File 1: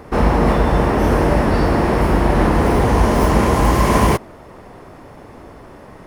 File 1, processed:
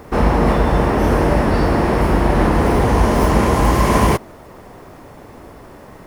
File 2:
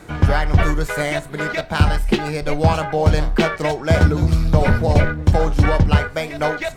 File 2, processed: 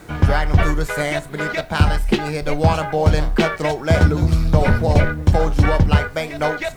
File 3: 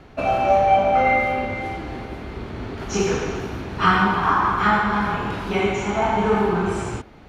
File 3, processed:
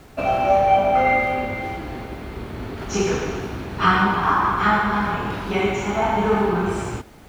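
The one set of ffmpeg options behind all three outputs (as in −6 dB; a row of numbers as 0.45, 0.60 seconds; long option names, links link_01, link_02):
-af "acrusher=bits=8:mix=0:aa=0.000001"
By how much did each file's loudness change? 0.0, 0.0, 0.0 LU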